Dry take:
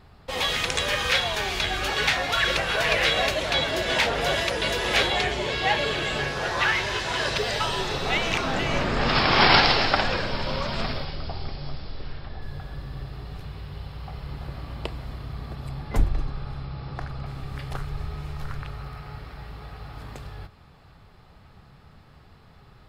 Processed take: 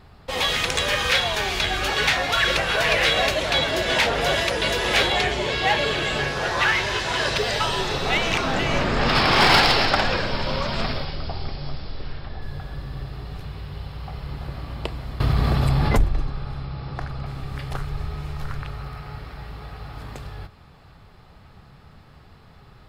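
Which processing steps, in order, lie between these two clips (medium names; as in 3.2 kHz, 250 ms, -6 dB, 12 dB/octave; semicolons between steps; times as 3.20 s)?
in parallel at -8 dB: wavefolder -16.5 dBFS; 15.20–16.04 s: on the sum: level flattener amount 70%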